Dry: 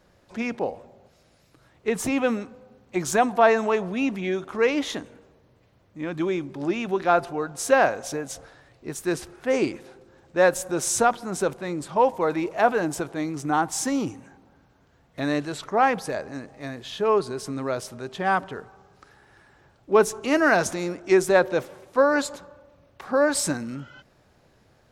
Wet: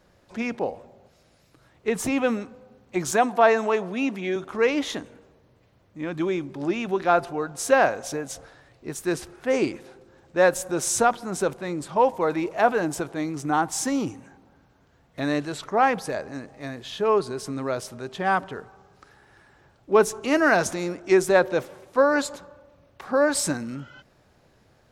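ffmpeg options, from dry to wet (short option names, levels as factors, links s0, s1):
-filter_complex "[0:a]asettb=1/sr,asplit=3[s0][s1][s2];[s0]atrim=end=3.114[s3];[s1]atrim=start=3.11:end=4.36,asetpts=PTS-STARTPTS,afade=t=in:d=0.004:c=qsin,afade=t=out:st=1.246:d=0.004:c=qsin,highpass=190[s4];[s2]atrim=start=4.356[s5];[s3][s4]acrossfade=d=0.004:c1=hsin:c2=qsin[s6];[s6][s5]acrossfade=d=0.004:c1=qsin:c2=hsin"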